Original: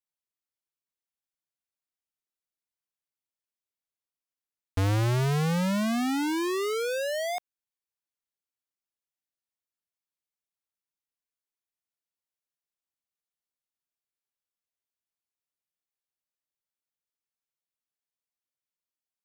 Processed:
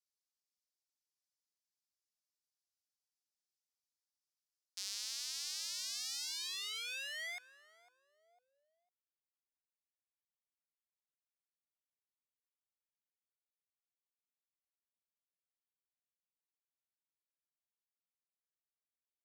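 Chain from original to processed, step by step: pre-emphasis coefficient 0.97; feedback echo 0.502 s, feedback 33%, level -19 dB; band-pass sweep 5000 Hz -> 540 Hz, 6.24–8.65; gain +8 dB

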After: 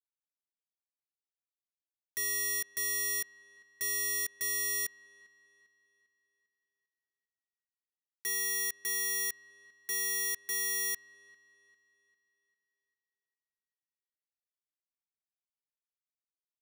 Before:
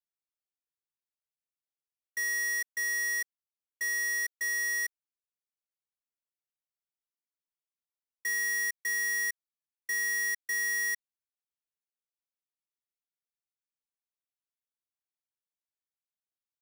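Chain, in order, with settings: elliptic band-stop 140–1400 Hz; tilt +1.5 dB/oct; limiter -28 dBFS, peak gain reduction 8.5 dB; bit-crush 6-bit; dark delay 0.399 s, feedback 43%, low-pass 3500 Hz, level -22 dB; gain +6.5 dB

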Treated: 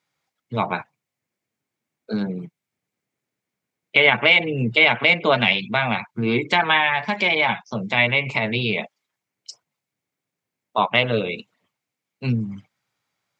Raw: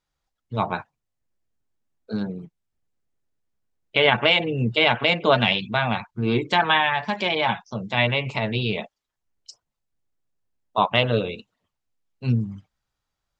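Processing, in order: HPF 120 Hz 24 dB/oct; bell 2200 Hz +9 dB 0.31 oct; in parallel at +3 dB: compressor, threshold -28 dBFS, peak gain reduction 17 dB; on the sum: gain -2.5 dB

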